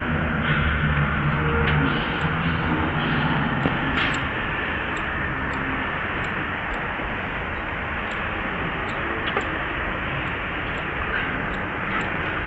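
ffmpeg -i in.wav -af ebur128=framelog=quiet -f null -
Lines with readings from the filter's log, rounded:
Integrated loudness:
  I:         -23.9 LUFS
  Threshold: -33.9 LUFS
Loudness range:
  LRA:         4.0 LU
  Threshold: -44.2 LUFS
  LRA low:   -25.9 LUFS
  LRA high:  -21.9 LUFS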